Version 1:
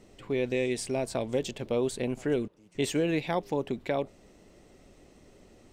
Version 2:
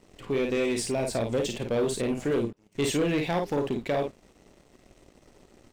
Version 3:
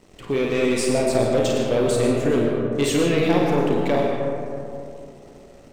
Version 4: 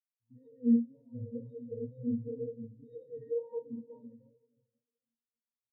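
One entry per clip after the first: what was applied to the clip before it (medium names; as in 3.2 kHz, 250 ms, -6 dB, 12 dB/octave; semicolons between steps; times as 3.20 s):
on a send: early reflections 35 ms -11 dB, 52 ms -6 dB; on the sum: waveshaping leveller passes 2; trim -4 dB
algorithmic reverb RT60 2.8 s, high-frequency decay 0.3×, pre-delay 65 ms, DRR 0.5 dB; trim +4.5 dB
wow and flutter 130 cents; pitch-class resonator A#, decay 0.19 s; spectral contrast expander 2.5:1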